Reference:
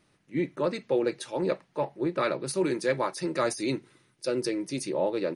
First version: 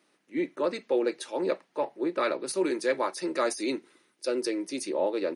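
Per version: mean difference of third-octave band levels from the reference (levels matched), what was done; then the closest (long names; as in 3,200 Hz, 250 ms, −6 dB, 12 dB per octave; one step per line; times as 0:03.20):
2.5 dB: high-pass filter 240 Hz 24 dB per octave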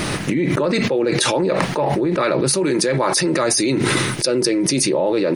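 6.5 dB: envelope flattener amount 100%
level +4.5 dB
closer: first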